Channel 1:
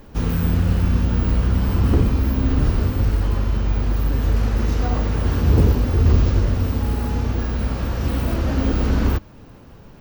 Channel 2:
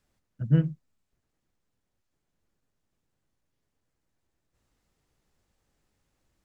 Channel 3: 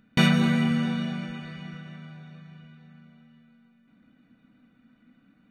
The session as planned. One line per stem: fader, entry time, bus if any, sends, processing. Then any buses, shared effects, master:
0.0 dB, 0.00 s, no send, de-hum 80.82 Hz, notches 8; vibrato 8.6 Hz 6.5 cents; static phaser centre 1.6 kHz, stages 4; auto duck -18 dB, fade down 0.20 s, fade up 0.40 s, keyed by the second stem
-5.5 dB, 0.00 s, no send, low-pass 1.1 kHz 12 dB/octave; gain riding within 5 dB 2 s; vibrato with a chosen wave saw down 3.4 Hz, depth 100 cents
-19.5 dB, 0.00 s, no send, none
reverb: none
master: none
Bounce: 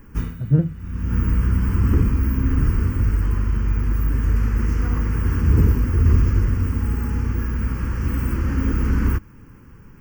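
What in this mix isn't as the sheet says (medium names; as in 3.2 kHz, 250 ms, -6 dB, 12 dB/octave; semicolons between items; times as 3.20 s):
stem 1: missing de-hum 80.82 Hz, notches 8; stem 2 -5.5 dB -> +5.0 dB; stem 3 -19.5 dB -> -27.0 dB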